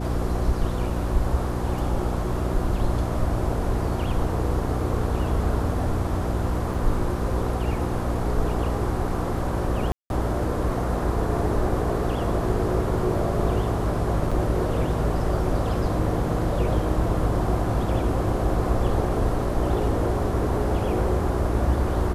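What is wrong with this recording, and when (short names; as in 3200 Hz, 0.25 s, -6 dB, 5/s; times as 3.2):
hum 60 Hz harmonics 6 -28 dBFS
6.74 gap 4.6 ms
9.92–10.1 gap 0.181 s
14.31–14.32 gap 5.5 ms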